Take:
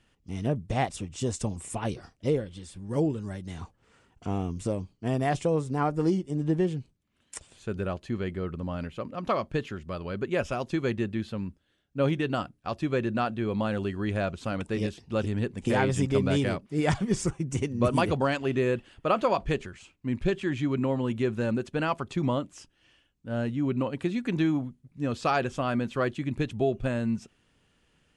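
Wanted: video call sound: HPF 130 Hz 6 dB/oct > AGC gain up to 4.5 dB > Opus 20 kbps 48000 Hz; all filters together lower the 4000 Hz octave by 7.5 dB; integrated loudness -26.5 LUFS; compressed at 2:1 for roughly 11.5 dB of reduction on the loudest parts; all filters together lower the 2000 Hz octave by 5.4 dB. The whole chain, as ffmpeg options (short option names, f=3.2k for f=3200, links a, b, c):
-af "equalizer=f=2k:t=o:g=-5.5,equalizer=f=4k:t=o:g=-8,acompressor=threshold=-42dB:ratio=2,highpass=f=130:p=1,dynaudnorm=m=4.5dB,volume=11.5dB" -ar 48000 -c:a libopus -b:a 20k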